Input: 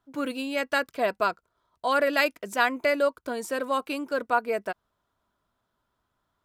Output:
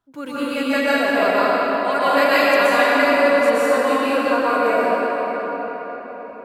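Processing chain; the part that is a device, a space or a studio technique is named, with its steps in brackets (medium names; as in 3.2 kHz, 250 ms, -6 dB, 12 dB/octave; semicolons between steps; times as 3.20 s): cathedral (reverberation RT60 5.3 s, pre-delay 114 ms, DRR -12 dB); trim -2 dB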